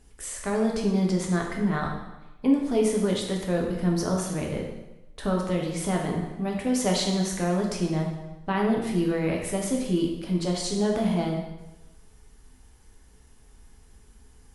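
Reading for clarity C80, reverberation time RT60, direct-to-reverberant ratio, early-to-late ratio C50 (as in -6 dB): 6.0 dB, 1.0 s, -0.5 dB, 3.5 dB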